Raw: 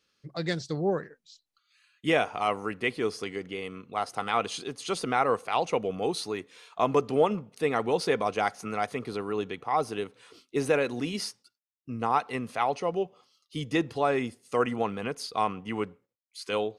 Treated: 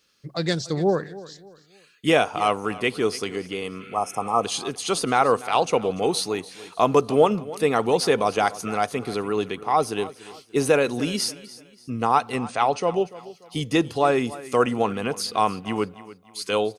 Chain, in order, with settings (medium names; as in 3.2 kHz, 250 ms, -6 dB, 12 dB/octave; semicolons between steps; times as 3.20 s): 3.83–4.42 s: spectral replace 1.3–5.1 kHz before; on a send: feedback delay 291 ms, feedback 35%, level -18 dB; on the sum: dynamic bell 2 kHz, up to -5 dB, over -47 dBFS, Q 3.5; 12.37–12.96 s: brick-wall FIR low-pass 9.4 kHz; treble shelf 6.5 kHz +7.5 dB; trim +6 dB